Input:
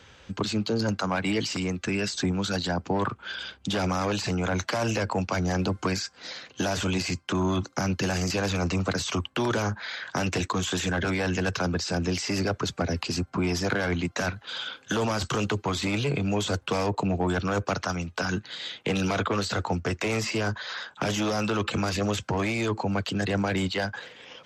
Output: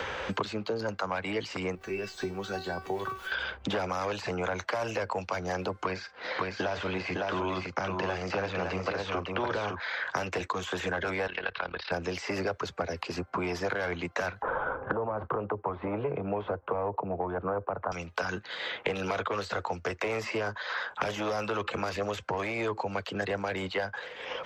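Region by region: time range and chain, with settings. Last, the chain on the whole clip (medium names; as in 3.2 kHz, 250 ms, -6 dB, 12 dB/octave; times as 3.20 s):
1.75–3.32 s: jump at every zero crossing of -38.5 dBFS + bass shelf 430 Hz +7.5 dB + feedback comb 380 Hz, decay 0.3 s, mix 90%
5.83–9.80 s: low-pass 3.7 kHz + multi-tap echo 43/558 ms -16/-4 dB
11.27–11.92 s: steep low-pass 4.1 kHz 48 dB/octave + tilt EQ +4.5 dB/octave + AM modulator 36 Hz, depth 65%
14.42–17.92 s: dead-time distortion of 0.052 ms + low-pass 1.1 kHz 24 dB/octave + three bands compressed up and down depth 100%
whole clip: graphic EQ 125/250/500/1000/2000/8000 Hz -5/-5/+7/+5/+4/-5 dB; three bands compressed up and down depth 100%; trim -8.5 dB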